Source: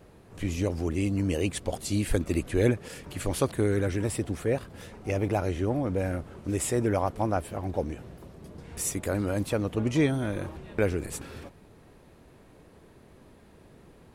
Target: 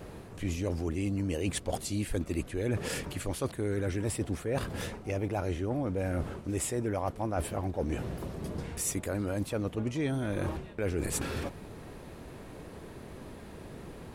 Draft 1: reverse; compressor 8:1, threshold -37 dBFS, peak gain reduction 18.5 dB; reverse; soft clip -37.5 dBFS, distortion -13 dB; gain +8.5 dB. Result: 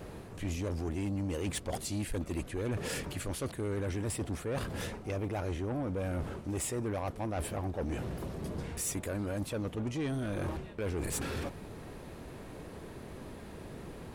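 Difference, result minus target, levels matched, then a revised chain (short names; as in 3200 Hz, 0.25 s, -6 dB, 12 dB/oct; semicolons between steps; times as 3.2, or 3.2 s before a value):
soft clip: distortion +17 dB
reverse; compressor 8:1, threshold -37 dBFS, peak gain reduction 18.5 dB; reverse; soft clip -26 dBFS, distortion -29 dB; gain +8.5 dB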